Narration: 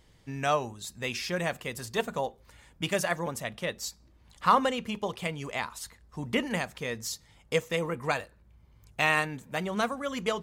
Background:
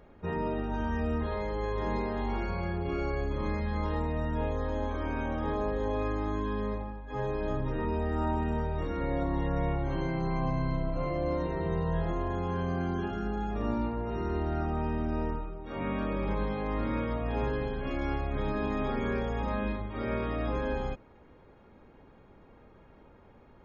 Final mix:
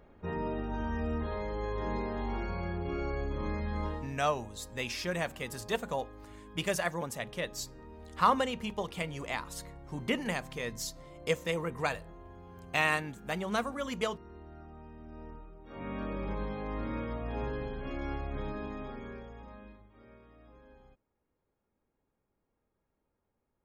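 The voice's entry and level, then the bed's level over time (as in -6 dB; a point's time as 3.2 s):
3.75 s, -3.0 dB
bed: 3.87 s -3 dB
4.2 s -19 dB
14.95 s -19 dB
16.02 s -5 dB
18.36 s -5 dB
20.23 s -26 dB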